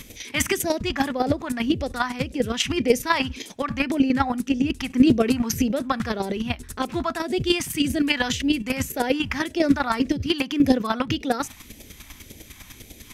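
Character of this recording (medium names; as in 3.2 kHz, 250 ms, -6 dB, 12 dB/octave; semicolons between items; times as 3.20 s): chopped level 10 Hz, depth 60%, duty 20%; phasing stages 2, 1.8 Hz, lowest notch 450–1100 Hz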